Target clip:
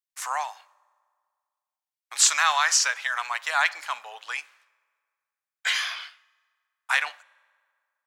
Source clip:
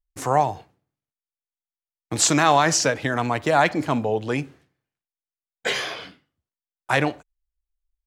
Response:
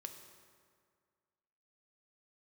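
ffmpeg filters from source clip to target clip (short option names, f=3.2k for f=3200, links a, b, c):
-filter_complex "[0:a]highpass=f=1.1k:w=0.5412,highpass=f=1.1k:w=1.3066,asplit=2[a][b];[1:a]atrim=start_sample=2205[c];[b][c]afir=irnorm=-1:irlink=0,volume=-13.5dB[d];[a][d]amix=inputs=2:normalize=0"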